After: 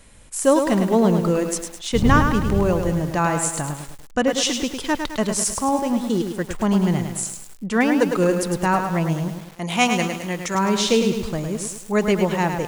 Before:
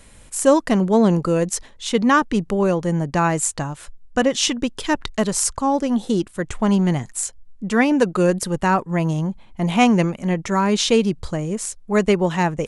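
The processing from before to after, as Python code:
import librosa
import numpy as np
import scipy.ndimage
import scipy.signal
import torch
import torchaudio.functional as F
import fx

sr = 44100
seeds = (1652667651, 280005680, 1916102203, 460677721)

y = fx.dmg_wind(x, sr, seeds[0], corner_hz=120.0, level_db=-18.0, at=(1.93, 2.93), fade=0.02)
y = fx.tilt_eq(y, sr, slope=2.5, at=(9.28, 10.55))
y = fx.echo_crushed(y, sr, ms=105, feedback_pct=55, bits=6, wet_db=-6.0)
y = y * 10.0 ** (-2.0 / 20.0)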